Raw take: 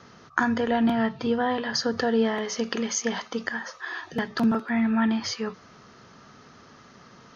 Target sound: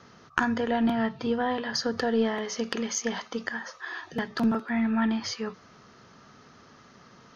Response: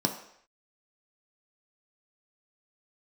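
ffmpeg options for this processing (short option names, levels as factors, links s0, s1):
-af "aeval=exprs='0.473*(cos(1*acos(clip(val(0)/0.473,-1,1)))-cos(1*PI/2))+0.15*(cos(2*acos(clip(val(0)/0.473,-1,1)))-cos(2*PI/2))+0.0422*(cos(3*acos(clip(val(0)/0.473,-1,1)))-cos(3*PI/2))+0.0335*(cos(4*acos(clip(val(0)/0.473,-1,1)))-cos(4*PI/2))':c=same"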